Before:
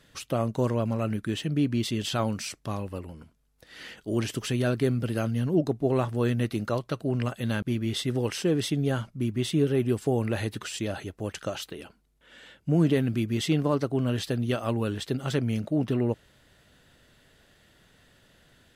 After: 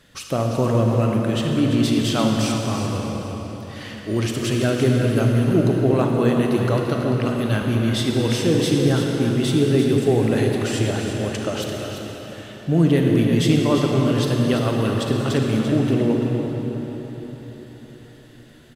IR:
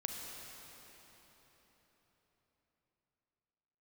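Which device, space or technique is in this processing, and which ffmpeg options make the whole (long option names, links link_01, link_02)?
cave: -filter_complex "[0:a]aecho=1:1:341:0.355[link_01];[1:a]atrim=start_sample=2205[link_02];[link_01][link_02]afir=irnorm=-1:irlink=0,volume=6.5dB"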